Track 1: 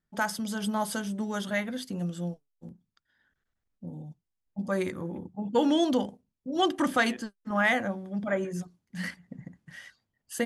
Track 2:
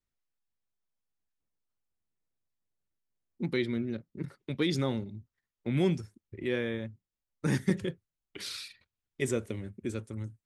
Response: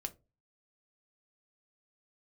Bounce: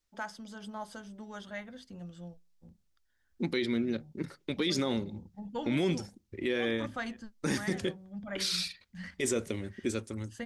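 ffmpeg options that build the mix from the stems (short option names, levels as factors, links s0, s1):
-filter_complex "[0:a]adynamicequalizer=threshold=0.00631:dfrequency=2800:dqfactor=0.74:tfrequency=2800:tqfactor=0.74:attack=5:release=100:ratio=0.375:range=3:mode=cutabove:tftype=bell,lowpass=5800,asubboost=boost=11.5:cutoff=100,volume=0.299,asplit=2[s0][s1];[s1]volume=0.168[s2];[1:a]equalizer=f=5300:t=o:w=1.3:g=6.5,volume=1.33,asplit=3[s3][s4][s5];[s4]volume=0.266[s6];[s5]apad=whole_len=461009[s7];[s0][s7]sidechaincompress=threshold=0.0398:ratio=8:attack=16:release=636[s8];[2:a]atrim=start_sample=2205[s9];[s2][s6]amix=inputs=2:normalize=0[s10];[s10][s9]afir=irnorm=-1:irlink=0[s11];[s8][s3][s11]amix=inputs=3:normalize=0,equalizer=f=130:w=2:g=-11,alimiter=limit=0.0944:level=0:latency=1:release=31"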